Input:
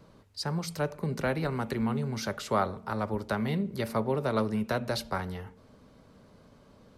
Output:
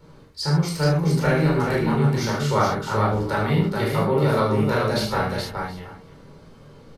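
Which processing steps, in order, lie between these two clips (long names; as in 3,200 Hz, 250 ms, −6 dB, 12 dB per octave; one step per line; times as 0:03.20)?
multi-tap delay 75/425/722 ms −6.5/−4/−19.5 dB
convolution reverb, pre-delay 13 ms, DRR −3 dB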